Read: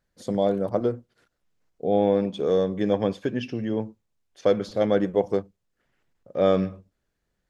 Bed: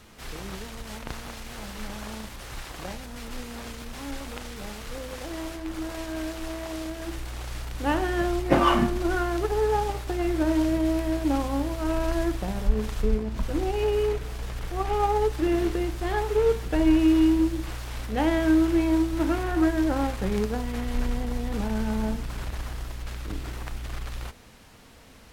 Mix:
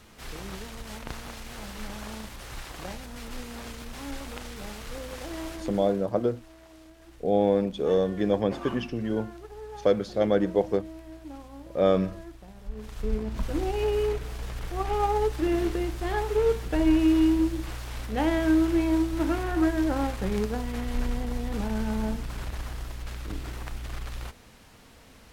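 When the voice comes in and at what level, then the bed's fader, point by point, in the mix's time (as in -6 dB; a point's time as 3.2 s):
5.40 s, -1.5 dB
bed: 5.63 s -1.5 dB
6.07 s -17.5 dB
12.58 s -17.5 dB
13.23 s -1.5 dB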